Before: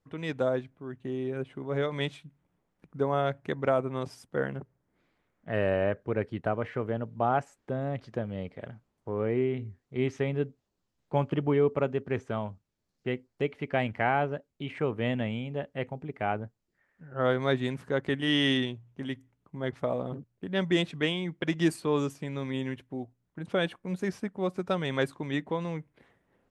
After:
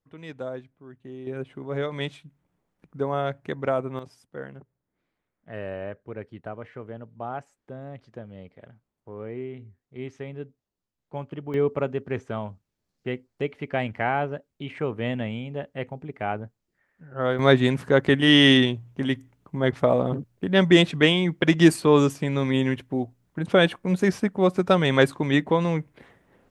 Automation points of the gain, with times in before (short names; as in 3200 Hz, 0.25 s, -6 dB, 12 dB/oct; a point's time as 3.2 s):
-6 dB
from 1.27 s +1 dB
from 3.99 s -7 dB
from 11.54 s +1.5 dB
from 17.39 s +10 dB